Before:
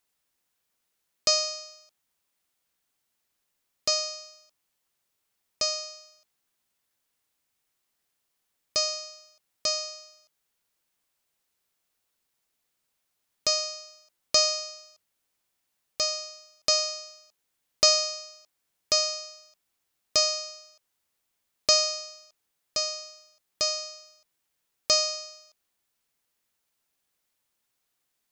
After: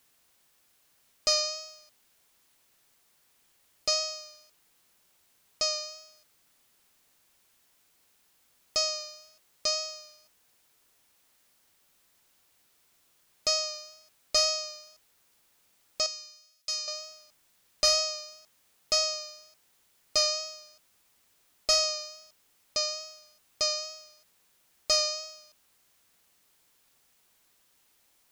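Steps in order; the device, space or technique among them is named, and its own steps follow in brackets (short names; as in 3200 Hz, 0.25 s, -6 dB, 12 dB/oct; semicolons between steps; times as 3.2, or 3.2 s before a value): compact cassette (soft clip -16.5 dBFS, distortion -14 dB; LPF 8900 Hz 12 dB/oct; wow and flutter 22 cents; white noise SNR 32 dB); 16.06–16.88 passive tone stack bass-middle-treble 5-5-5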